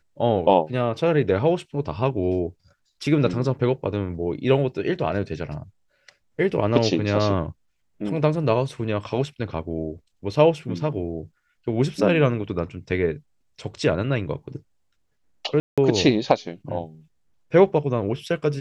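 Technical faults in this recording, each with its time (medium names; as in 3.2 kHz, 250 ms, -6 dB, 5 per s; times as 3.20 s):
15.60–15.78 s: dropout 176 ms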